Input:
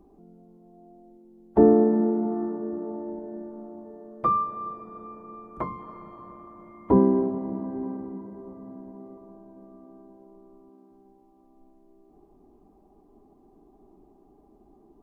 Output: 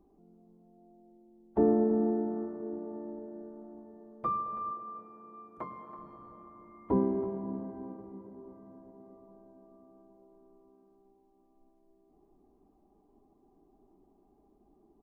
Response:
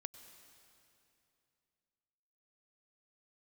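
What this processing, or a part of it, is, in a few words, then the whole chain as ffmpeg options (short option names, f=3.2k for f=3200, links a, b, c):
cave: -filter_complex "[0:a]aecho=1:1:327:0.224[a];[1:a]atrim=start_sample=2205[b];[a][b]afir=irnorm=-1:irlink=0,asettb=1/sr,asplit=3[c][d][e];[c]atrim=end=4.714[f];[d]atrim=start=4.71:end=5.99,asetpts=PTS-STARTPTS,afade=t=in:d=0.004:c=qsin,afade=t=out:st=1.276:d=0.004:c=qsin,highpass=f=220:p=1[g];[e]atrim=start=5.986[h];[f][g]acrossfade=d=0.004:c1=hsin:c2=qsin[i];[i][h]acrossfade=d=0.004:c1=qsin:c2=hsin,volume=-4.5dB"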